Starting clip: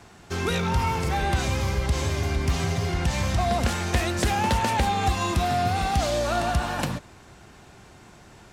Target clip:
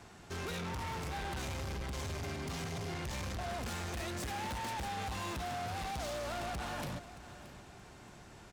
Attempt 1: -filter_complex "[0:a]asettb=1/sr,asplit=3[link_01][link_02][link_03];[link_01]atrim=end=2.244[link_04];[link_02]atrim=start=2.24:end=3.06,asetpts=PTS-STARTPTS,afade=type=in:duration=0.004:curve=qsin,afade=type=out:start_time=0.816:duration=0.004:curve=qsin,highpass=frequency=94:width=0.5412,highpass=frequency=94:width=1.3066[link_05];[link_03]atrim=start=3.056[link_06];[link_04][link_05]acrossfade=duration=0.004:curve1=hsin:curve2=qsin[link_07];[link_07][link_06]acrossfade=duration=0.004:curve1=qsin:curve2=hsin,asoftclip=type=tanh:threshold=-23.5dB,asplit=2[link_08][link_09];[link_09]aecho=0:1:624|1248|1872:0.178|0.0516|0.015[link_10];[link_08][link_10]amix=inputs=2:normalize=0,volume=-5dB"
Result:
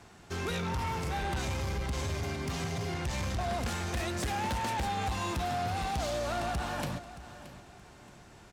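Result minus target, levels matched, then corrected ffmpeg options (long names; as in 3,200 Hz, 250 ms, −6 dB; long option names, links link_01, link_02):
soft clipping: distortion −6 dB
-filter_complex "[0:a]asettb=1/sr,asplit=3[link_01][link_02][link_03];[link_01]atrim=end=2.244[link_04];[link_02]atrim=start=2.24:end=3.06,asetpts=PTS-STARTPTS,afade=type=in:duration=0.004:curve=qsin,afade=type=out:start_time=0.816:duration=0.004:curve=qsin,highpass=frequency=94:width=0.5412,highpass=frequency=94:width=1.3066[link_05];[link_03]atrim=start=3.056[link_06];[link_04][link_05]acrossfade=duration=0.004:curve1=hsin:curve2=qsin[link_07];[link_07][link_06]acrossfade=duration=0.004:curve1=qsin:curve2=hsin,asoftclip=type=tanh:threshold=-32.5dB,asplit=2[link_08][link_09];[link_09]aecho=0:1:624|1248|1872:0.178|0.0516|0.015[link_10];[link_08][link_10]amix=inputs=2:normalize=0,volume=-5dB"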